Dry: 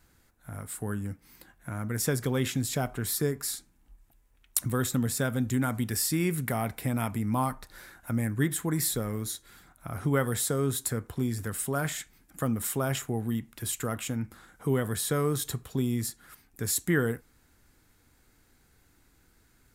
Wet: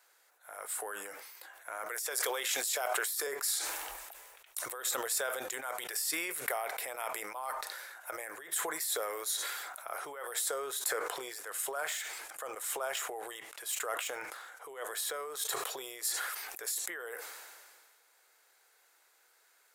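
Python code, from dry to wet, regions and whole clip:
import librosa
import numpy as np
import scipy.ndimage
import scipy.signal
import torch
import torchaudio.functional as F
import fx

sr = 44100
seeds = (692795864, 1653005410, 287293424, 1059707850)

y = fx.chain(x, sr, fx.highpass(hz=150.0, slope=24),
    fx.tilt_eq(slope=1.5),
    fx.pre_swell(db_per_s=37.0), at=(1.86, 3.27))
y = fx.chain(y, sr, fx.tremolo(hz=5.9, depth=0.4),
    fx.resample_linear(factor=2), at=(10.54, 15.43))
y = fx.over_compress(y, sr, threshold_db=-32.0, ratio=-1.0)
y = scipy.signal.sosfilt(scipy.signal.cheby2(4, 40, 250.0, 'highpass', fs=sr, output='sos'), y)
y = fx.sustainer(y, sr, db_per_s=30.0)
y = F.gain(torch.from_numpy(y), -2.0).numpy()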